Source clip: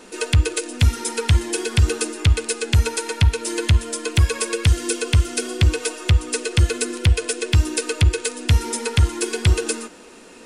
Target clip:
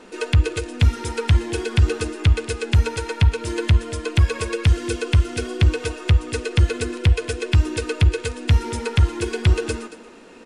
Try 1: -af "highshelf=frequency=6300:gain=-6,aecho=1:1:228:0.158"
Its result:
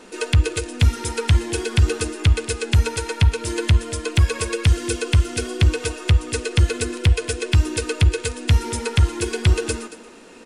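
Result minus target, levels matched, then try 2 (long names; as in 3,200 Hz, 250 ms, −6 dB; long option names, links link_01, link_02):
8,000 Hz band +5.5 dB
-af "highshelf=frequency=6300:gain=-16,aecho=1:1:228:0.158"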